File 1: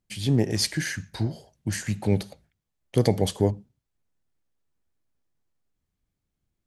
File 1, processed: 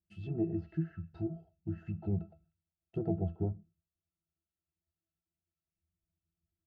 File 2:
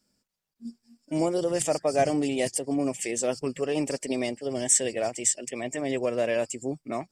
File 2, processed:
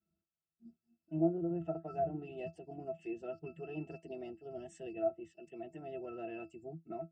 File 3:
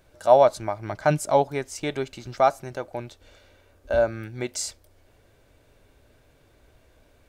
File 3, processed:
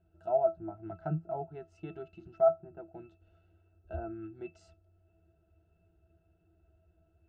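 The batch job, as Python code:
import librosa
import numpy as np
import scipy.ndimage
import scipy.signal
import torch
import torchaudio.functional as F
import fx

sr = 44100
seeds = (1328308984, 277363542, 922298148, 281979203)

y = fx.octave_resonator(x, sr, note='E', decay_s=0.14)
y = fx.env_lowpass_down(y, sr, base_hz=1300.0, full_db=-32.5)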